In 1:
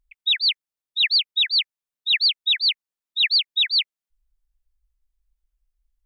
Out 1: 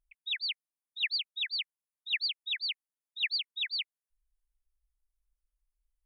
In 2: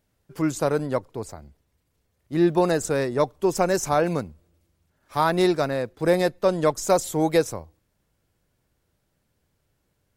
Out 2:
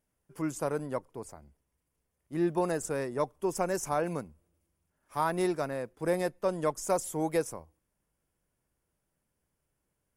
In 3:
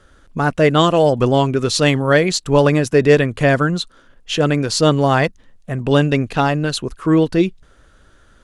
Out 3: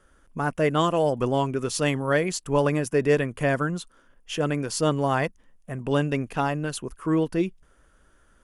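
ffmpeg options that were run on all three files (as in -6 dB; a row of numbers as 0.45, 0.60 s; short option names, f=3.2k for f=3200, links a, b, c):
-af "equalizer=f=100:t=o:w=0.33:g=-9,equalizer=f=1k:t=o:w=0.33:g=3,equalizer=f=4k:t=o:w=0.33:g=-10,equalizer=f=10k:t=o:w=0.33:g=9,volume=-9dB"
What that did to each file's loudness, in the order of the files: -13.5, -9.0, -9.0 LU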